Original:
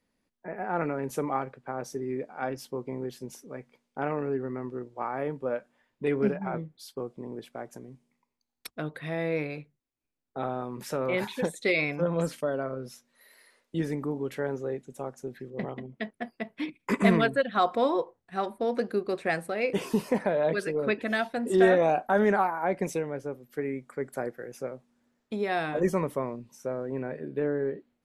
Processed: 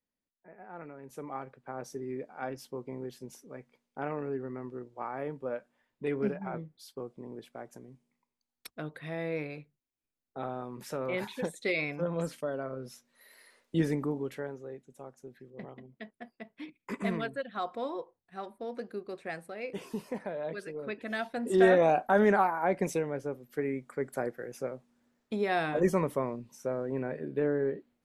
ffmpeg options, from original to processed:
ffmpeg -i in.wav -af "volume=12dB,afade=type=in:start_time=1.02:duration=0.77:silence=0.281838,afade=type=in:start_time=12.62:duration=1.2:silence=0.446684,afade=type=out:start_time=13.82:duration=0.73:silence=0.237137,afade=type=in:start_time=20.91:duration=0.89:silence=0.316228" out.wav

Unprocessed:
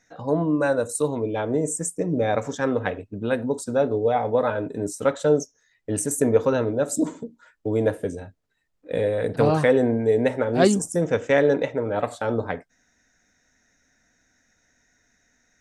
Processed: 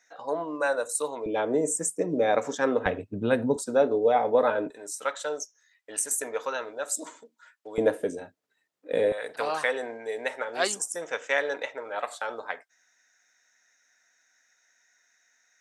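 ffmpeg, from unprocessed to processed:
ffmpeg -i in.wav -af "asetnsamples=nb_out_samples=441:pad=0,asendcmd='1.26 highpass f 290;2.86 highpass f 95;3.56 highpass f 280;4.7 highpass f 1000;7.78 highpass f 280;9.12 highpass f 940',highpass=660" out.wav

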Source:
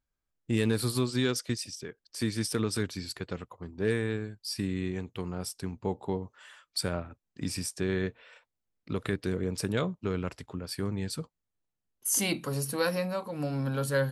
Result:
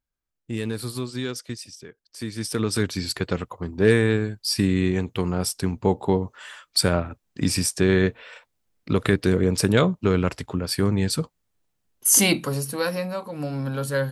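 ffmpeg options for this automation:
ffmpeg -i in.wav -af "volume=11dB,afade=type=in:start_time=2.31:duration=0.87:silence=0.237137,afade=type=out:start_time=12.2:duration=0.45:silence=0.398107" out.wav

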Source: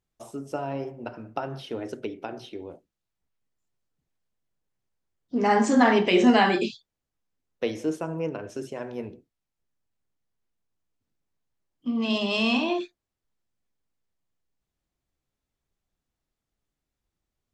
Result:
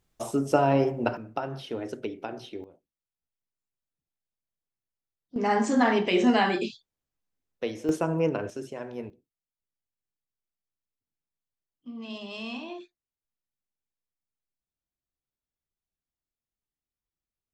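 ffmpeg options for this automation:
ffmpeg -i in.wav -af "asetnsamples=nb_out_samples=441:pad=0,asendcmd='1.17 volume volume -0.5dB;2.64 volume volume -12.5dB;5.36 volume volume -3.5dB;7.89 volume volume 4.5dB;8.5 volume volume -2.5dB;9.1 volume volume -13dB',volume=9.5dB" out.wav

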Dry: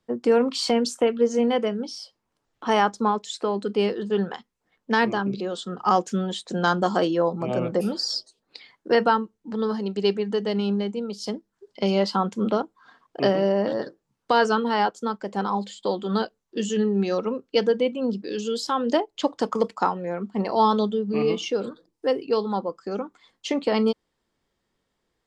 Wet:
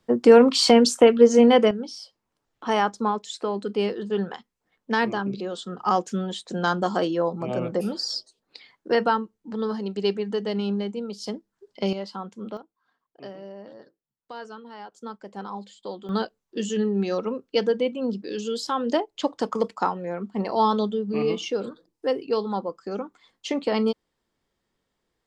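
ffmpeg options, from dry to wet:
ffmpeg -i in.wav -af "asetnsamples=nb_out_samples=441:pad=0,asendcmd='1.71 volume volume -2dB;11.93 volume volume -11.5dB;12.57 volume volume -19dB;14.92 volume volume -9.5dB;16.09 volume volume -1.5dB',volume=6.5dB" out.wav

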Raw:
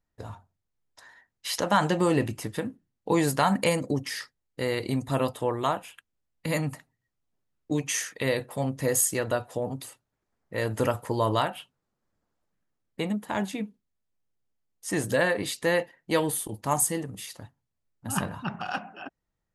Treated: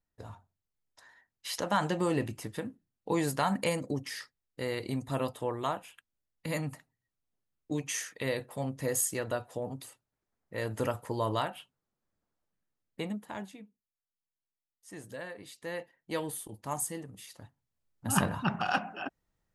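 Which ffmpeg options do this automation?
ffmpeg -i in.wav -af "volume=14.5dB,afade=type=out:start_time=13:duration=0.61:silence=0.251189,afade=type=in:start_time=15.47:duration=0.68:silence=0.375837,afade=type=in:start_time=17.27:duration=1.04:silence=0.251189" out.wav

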